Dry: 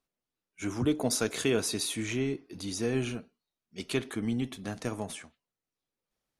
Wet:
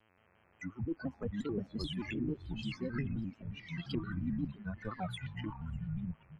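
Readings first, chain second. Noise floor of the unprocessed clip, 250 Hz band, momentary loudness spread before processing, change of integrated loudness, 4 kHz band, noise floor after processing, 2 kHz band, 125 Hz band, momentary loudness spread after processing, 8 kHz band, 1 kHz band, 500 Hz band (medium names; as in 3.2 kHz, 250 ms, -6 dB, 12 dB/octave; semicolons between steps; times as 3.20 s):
under -85 dBFS, -5.0 dB, 11 LU, -7.5 dB, -10.0 dB, -69 dBFS, -8.0 dB, -1.0 dB, 6 LU, under -25 dB, -5.0 dB, -11.5 dB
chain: expander on every frequency bin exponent 3; recorder AGC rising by 10 dB/s; expander -54 dBFS; bass shelf 250 Hz +9.5 dB; low-pass that closes with the level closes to 390 Hz, closed at -27.5 dBFS; reverse; compression 6:1, threshold -42 dBFS, peak gain reduction 18.5 dB; reverse; mains buzz 100 Hz, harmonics 29, -77 dBFS -2 dB/octave; ever faster or slower copies 175 ms, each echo -5 st, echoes 3; on a send: delay 597 ms -24 dB; on the sum: vibrato with a chosen wave square 5.7 Hz, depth 160 cents; trim +6 dB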